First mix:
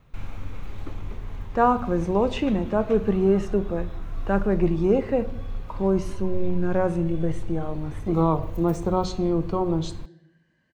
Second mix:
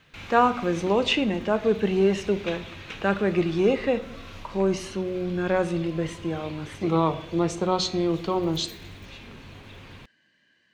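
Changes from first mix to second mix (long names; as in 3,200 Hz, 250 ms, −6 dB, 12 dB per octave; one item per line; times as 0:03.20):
speech: entry −1.25 s
master: add meter weighting curve D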